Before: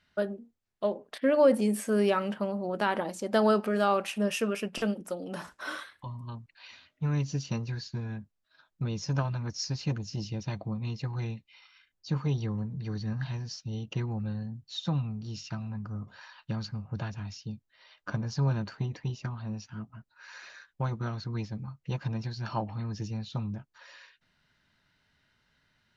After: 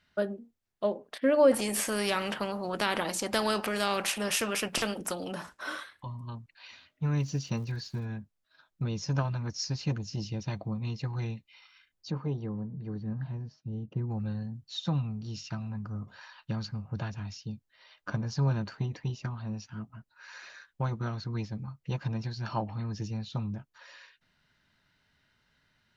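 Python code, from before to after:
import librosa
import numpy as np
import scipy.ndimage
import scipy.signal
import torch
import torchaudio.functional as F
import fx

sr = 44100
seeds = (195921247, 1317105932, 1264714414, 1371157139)

y = fx.spectral_comp(x, sr, ratio=2.0, at=(1.51, 5.31), fade=0.02)
y = fx.dmg_crackle(y, sr, seeds[0], per_s=210.0, level_db=-49.0, at=(7.16, 8.04), fade=0.02)
y = fx.bandpass_q(y, sr, hz=fx.line((12.1, 460.0), (14.09, 160.0)), q=0.52, at=(12.1, 14.09), fade=0.02)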